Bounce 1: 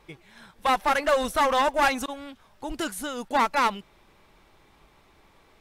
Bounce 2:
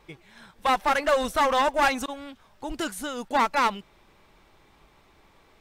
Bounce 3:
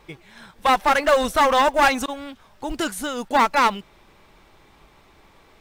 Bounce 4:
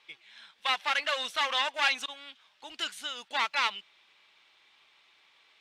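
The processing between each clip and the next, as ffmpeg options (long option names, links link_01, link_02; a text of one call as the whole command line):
ffmpeg -i in.wav -af "equalizer=frequency=11000:width=6.9:gain=-8.5" out.wav
ffmpeg -i in.wav -af "acrusher=bits=9:mode=log:mix=0:aa=0.000001,volume=5dB" out.wav
ffmpeg -i in.wav -af "bandpass=frequency=3200:width_type=q:width=1.7:csg=0" out.wav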